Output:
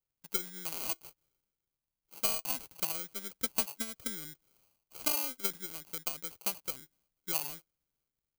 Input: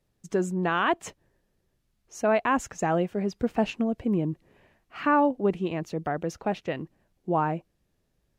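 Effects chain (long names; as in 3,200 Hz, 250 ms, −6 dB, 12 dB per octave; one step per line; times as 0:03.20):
sample-rate reduction 1,800 Hz, jitter 0%
transient designer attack +11 dB, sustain +7 dB
first-order pre-emphasis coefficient 0.9
level −5 dB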